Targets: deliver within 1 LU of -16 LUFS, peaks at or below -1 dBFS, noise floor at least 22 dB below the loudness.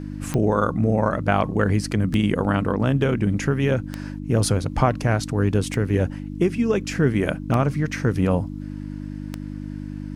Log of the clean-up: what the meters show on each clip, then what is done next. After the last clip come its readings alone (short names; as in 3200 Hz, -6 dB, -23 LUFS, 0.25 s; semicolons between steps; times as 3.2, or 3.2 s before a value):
clicks 6; hum 50 Hz; harmonics up to 300 Hz; hum level -29 dBFS; loudness -22.0 LUFS; peak -5.0 dBFS; loudness target -16.0 LUFS
-> de-click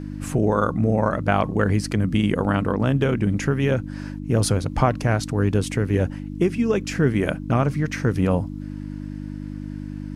clicks 0; hum 50 Hz; harmonics up to 300 Hz; hum level -29 dBFS
-> de-hum 50 Hz, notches 6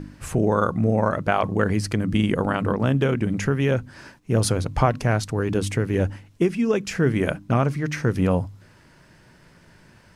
hum none; loudness -23.0 LUFS; peak -5.0 dBFS; loudness target -16.0 LUFS
-> gain +7 dB; limiter -1 dBFS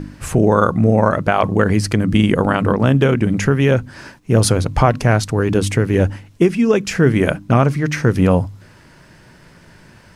loudness -16.0 LUFS; peak -1.0 dBFS; noise floor -47 dBFS